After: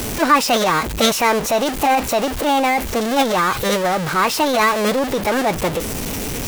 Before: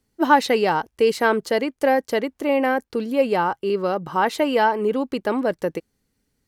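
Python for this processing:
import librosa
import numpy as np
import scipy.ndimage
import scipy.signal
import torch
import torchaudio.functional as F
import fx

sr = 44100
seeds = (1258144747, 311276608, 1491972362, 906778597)

y = x + 0.5 * 10.0 ** (-18.5 / 20.0) * np.sign(x)
y = fx.formant_shift(y, sr, semitones=5)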